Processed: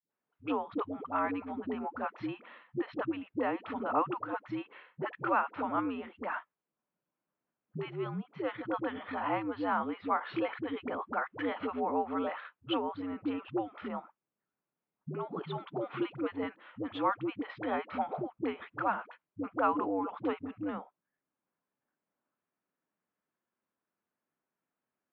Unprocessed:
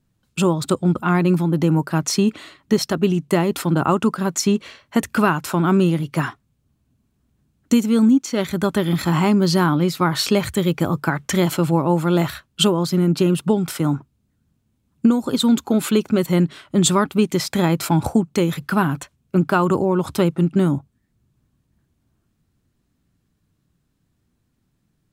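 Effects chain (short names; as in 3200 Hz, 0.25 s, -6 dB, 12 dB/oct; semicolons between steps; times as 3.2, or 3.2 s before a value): three-band isolator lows -16 dB, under 410 Hz, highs -19 dB, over 2400 Hz; dispersion highs, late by 0.102 s, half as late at 430 Hz; mistuned SSB -81 Hz 280–3500 Hz; gain -8 dB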